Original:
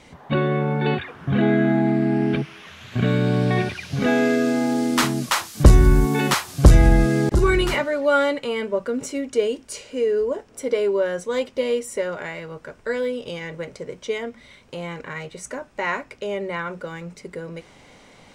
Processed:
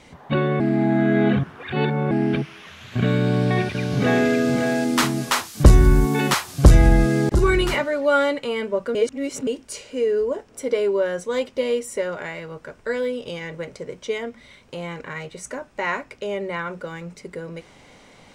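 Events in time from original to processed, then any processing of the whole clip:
0.60–2.11 s: reverse
3.18–4.28 s: echo throw 560 ms, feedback 25%, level -5.5 dB
8.95–9.47 s: reverse

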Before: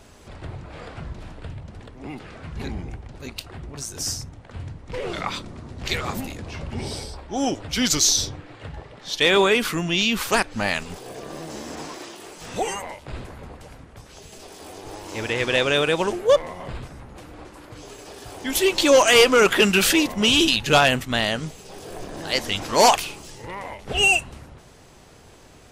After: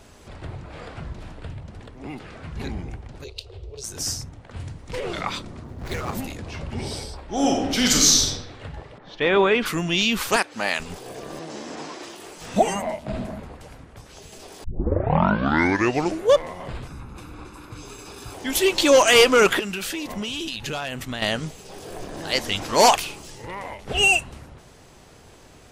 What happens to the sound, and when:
3.24–3.84 s: FFT filter 100 Hz 0 dB, 230 Hz -28 dB, 430 Hz +6 dB, 720 Hz -9 dB, 1.8 kHz -18 dB, 2.6 kHz -5 dB, 4 kHz +1 dB, 13 kHz -16 dB
4.56–5.00 s: treble shelf 4.9 kHz +10.5 dB
5.64–6.13 s: median filter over 15 samples
7.24–8.27 s: reverb throw, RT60 1 s, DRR -1 dB
8.97–9.65 s: low-pass 1.3 kHz -> 3.3 kHz
10.36–10.80 s: Bessel high-pass 320 Hz
11.39–12.03 s: band-pass 150–6900 Hz
12.56–13.40 s: small resonant body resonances 210/640 Hz, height 16 dB, ringing for 50 ms
14.64 s: tape start 1.67 s
16.87–18.34 s: comb 0.8 ms, depth 58%
19.59–21.22 s: compression 8:1, threshold -26 dBFS

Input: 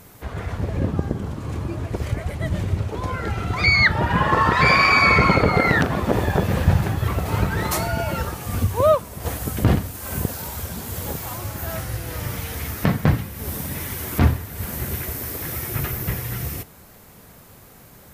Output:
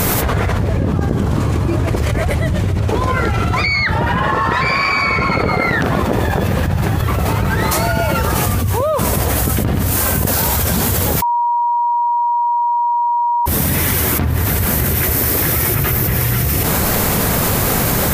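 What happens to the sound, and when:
11.22–13.46 s: bleep 953 Hz -9 dBFS
whole clip: level flattener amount 100%; trim -4.5 dB

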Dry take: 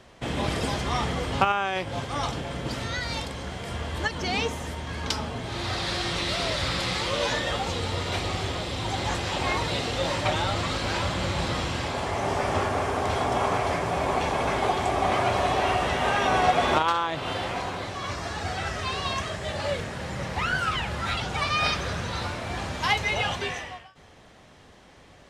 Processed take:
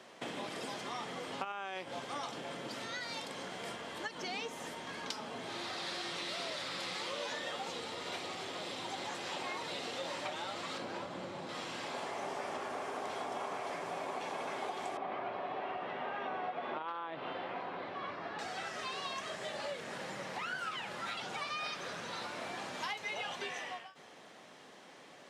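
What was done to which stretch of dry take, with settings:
10.78–11.49 s: tilt shelf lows +6 dB, about 1.2 kHz
14.97–18.39 s: distance through air 380 m
whole clip: compression, threshold -35 dBFS; Bessel high-pass 260 Hz, order 4; trim -1.5 dB

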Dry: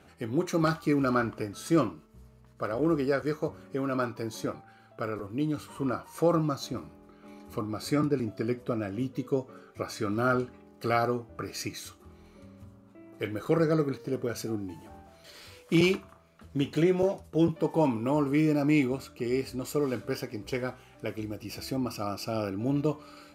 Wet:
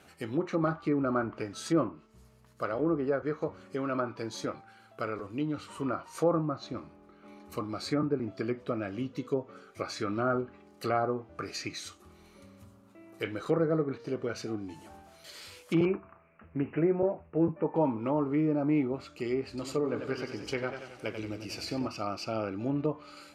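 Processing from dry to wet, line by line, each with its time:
6.45–7.52 s: low-pass 2.3 kHz 6 dB/octave
15.85–17.76 s: steep low-pass 2.7 kHz 96 dB/octave
19.48–21.88 s: modulated delay 92 ms, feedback 59%, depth 84 cents, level -8.5 dB
whole clip: tilt EQ +1.5 dB/octave; low-pass that closes with the level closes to 1.1 kHz, closed at -25 dBFS

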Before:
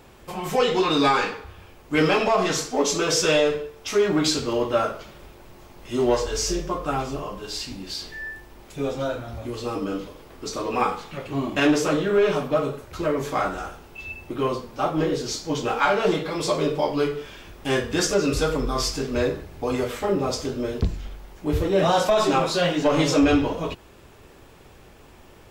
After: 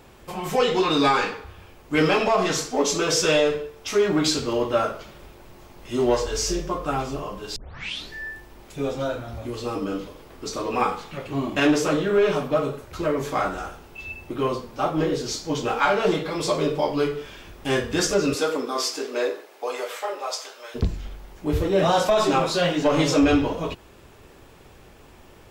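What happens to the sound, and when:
7.56 s: tape start 0.56 s
18.33–20.74 s: high-pass 220 Hz -> 800 Hz 24 dB/octave

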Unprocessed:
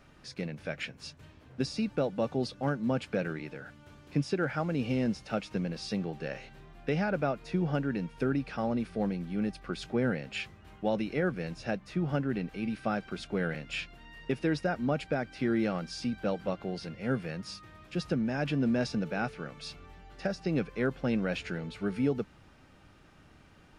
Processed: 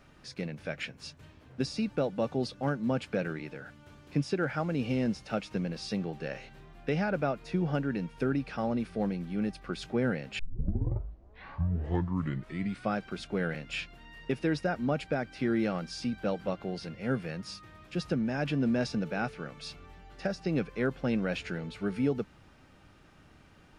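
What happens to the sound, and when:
10.39 s: tape start 2.58 s

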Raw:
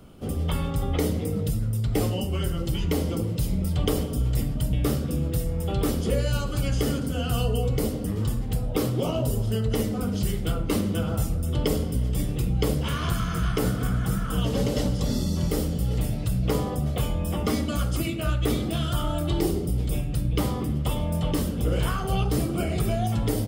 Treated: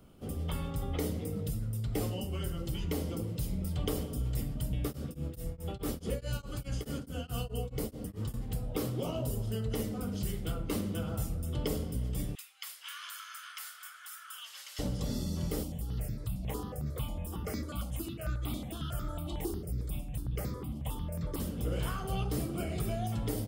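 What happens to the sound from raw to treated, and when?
4.83–8.34 s: tremolo of two beating tones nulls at 4.7 Hz
12.35–14.79 s: inverse Chebyshev high-pass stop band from 300 Hz, stop band 70 dB
15.63–21.40 s: stepped phaser 11 Hz 440–3000 Hz
whole clip: treble shelf 11 kHz +5 dB; trim -9 dB

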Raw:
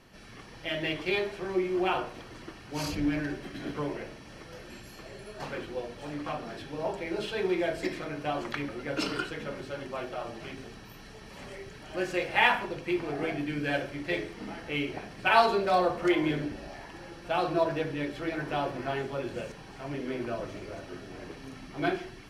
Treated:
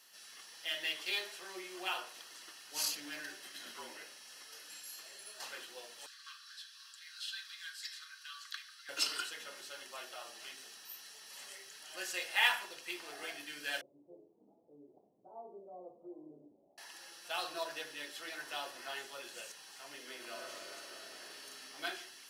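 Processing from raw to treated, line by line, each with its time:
3.63–4.98 s: frequency shift -51 Hz
6.06–8.89 s: rippled Chebyshev high-pass 1.1 kHz, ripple 9 dB
13.81–16.78 s: Gaussian low-pass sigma 17 samples
20.15–21.61 s: reverb throw, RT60 2.6 s, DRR 0 dB
whole clip: high-pass 290 Hz 6 dB/octave; differentiator; band-stop 2.3 kHz, Q 7.5; trim +7 dB

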